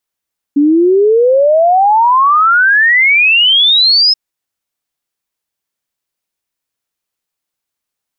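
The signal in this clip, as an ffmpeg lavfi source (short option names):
-f lavfi -i "aevalsrc='0.531*clip(min(t,3.58-t)/0.01,0,1)*sin(2*PI*280*3.58/log(5200/280)*(exp(log(5200/280)*t/3.58)-1))':d=3.58:s=44100"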